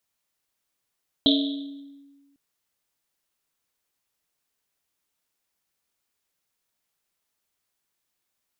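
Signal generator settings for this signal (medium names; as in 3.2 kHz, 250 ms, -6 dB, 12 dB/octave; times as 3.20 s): Risset drum, pitch 280 Hz, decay 1.52 s, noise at 3.6 kHz, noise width 780 Hz, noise 35%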